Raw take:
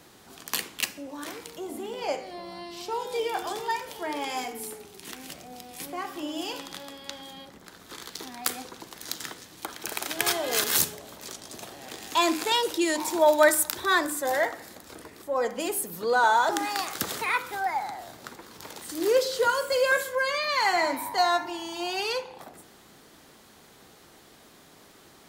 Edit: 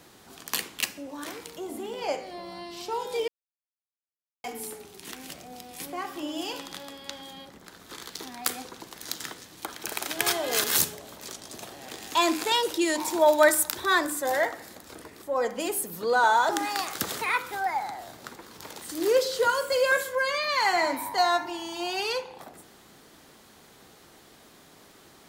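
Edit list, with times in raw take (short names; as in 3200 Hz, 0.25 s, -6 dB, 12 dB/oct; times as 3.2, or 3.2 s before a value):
3.28–4.44 mute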